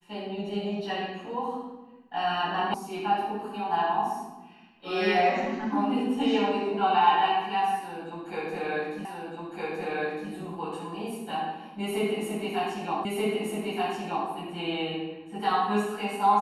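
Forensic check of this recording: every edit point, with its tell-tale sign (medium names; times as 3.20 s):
2.74 s: sound stops dead
9.05 s: repeat of the last 1.26 s
13.05 s: repeat of the last 1.23 s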